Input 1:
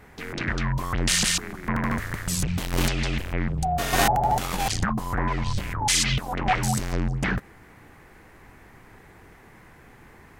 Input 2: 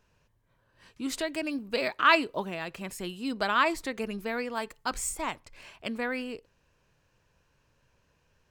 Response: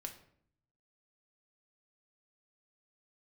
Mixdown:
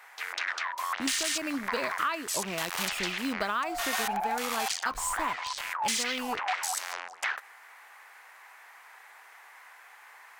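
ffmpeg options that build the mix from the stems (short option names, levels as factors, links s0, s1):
-filter_complex "[0:a]asoftclip=type=tanh:threshold=0.133,highpass=f=800:w=0.5412,highpass=f=800:w=1.3066,volume=1.33[s0];[1:a]acrusher=bits=6:mix=0:aa=0.5,equalizer=f=1200:w=3.1:g=5,volume=1.12[s1];[s0][s1]amix=inputs=2:normalize=0,acompressor=threshold=0.0501:ratio=16"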